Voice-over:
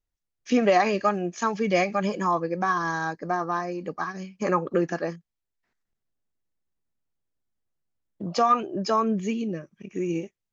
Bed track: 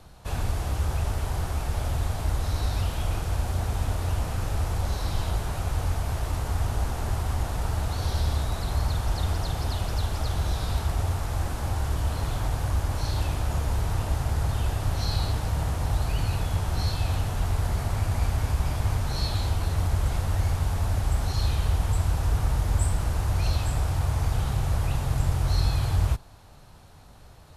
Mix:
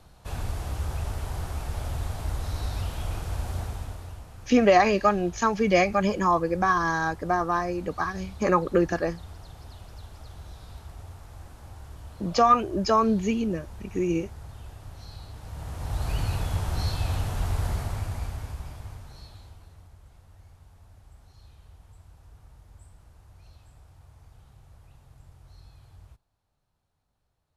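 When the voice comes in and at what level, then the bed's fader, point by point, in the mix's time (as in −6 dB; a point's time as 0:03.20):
4.00 s, +2.0 dB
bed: 0:03.59 −4 dB
0:04.26 −16.5 dB
0:15.29 −16.5 dB
0:16.11 −1.5 dB
0:17.70 −1.5 dB
0:19.97 −27.5 dB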